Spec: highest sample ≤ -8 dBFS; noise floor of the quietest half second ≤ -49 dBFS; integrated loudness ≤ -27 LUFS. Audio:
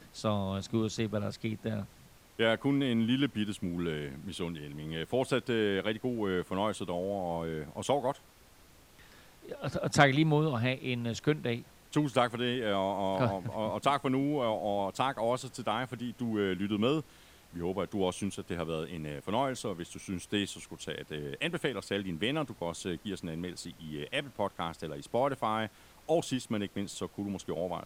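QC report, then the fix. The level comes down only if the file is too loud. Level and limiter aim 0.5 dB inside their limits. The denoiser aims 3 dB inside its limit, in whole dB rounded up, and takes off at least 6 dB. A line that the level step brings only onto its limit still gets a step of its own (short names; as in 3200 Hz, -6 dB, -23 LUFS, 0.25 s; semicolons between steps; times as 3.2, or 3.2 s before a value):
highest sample -7.0 dBFS: fail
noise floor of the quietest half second -58 dBFS: OK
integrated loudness -33.0 LUFS: OK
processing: limiter -8.5 dBFS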